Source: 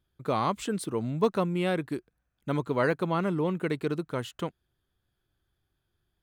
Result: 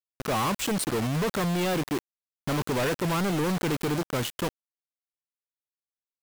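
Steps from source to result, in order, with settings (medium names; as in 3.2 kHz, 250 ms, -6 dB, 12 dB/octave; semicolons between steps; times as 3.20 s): companded quantiser 2-bit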